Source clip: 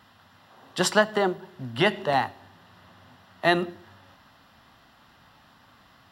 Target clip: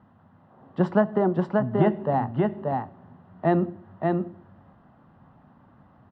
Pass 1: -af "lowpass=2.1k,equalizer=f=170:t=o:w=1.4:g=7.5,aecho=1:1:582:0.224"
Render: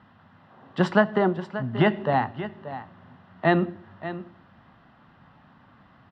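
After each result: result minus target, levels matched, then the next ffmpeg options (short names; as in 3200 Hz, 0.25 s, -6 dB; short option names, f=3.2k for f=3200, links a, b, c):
2000 Hz band +8.5 dB; echo-to-direct -10 dB
-af "lowpass=900,equalizer=f=170:t=o:w=1.4:g=7.5,aecho=1:1:582:0.224"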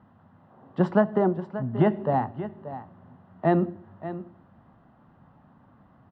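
echo-to-direct -10 dB
-af "lowpass=900,equalizer=f=170:t=o:w=1.4:g=7.5,aecho=1:1:582:0.708"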